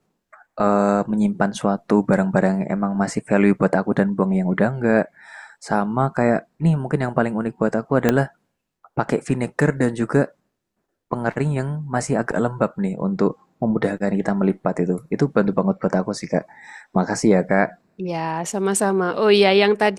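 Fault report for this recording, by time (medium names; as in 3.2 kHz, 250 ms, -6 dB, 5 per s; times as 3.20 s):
8.09 s: pop -3 dBFS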